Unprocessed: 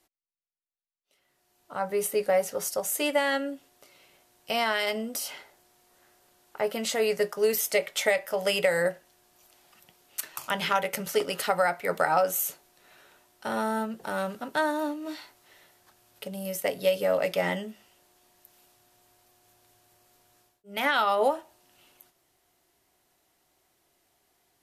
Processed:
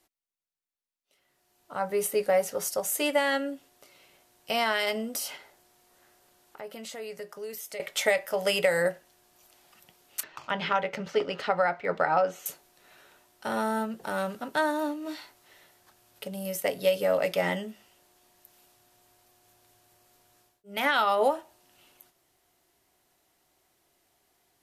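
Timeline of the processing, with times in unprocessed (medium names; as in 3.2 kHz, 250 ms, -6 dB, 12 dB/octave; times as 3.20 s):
5.36–7.80 s: compression 2:1, threshold -47 dBFS
10.23–12.46 s: distance through air 180 m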